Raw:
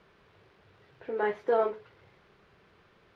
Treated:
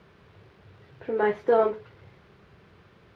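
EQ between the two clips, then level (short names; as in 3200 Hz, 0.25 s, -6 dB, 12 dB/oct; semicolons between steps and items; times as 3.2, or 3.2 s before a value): HPF 68 Hz; low shelf 190 Hz +11.5 dB; +3.5 dB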